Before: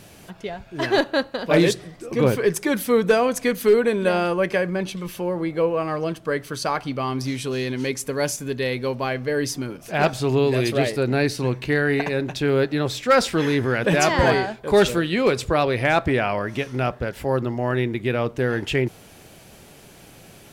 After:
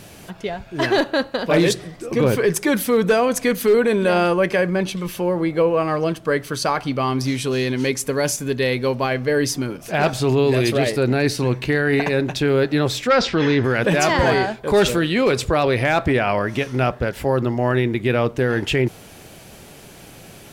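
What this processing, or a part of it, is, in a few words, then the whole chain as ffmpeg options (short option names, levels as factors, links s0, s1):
clipper into limiter: -filter_complex "[0:a]asoftclip=type=hard:threshold=0.316,alimiter=limit=0.2:level=0:latency=1:release=11,asplit=3[s0][s1][s2];[s0]afade=t=out:st=13.07:d=0.02[s3];[s1]lowpass=f=5500:w=0.5412,lowpass=f=5500:w=1.3066,afade=t=in:st=13.07:d=0.02,afade=t=out:st=13.63:d=0.02[s4];[s2]afade=t=in:st=13.63:d=0.02[s5];[s3][s4][s5]amix=inputs=3:normalize=0,volume=1.68"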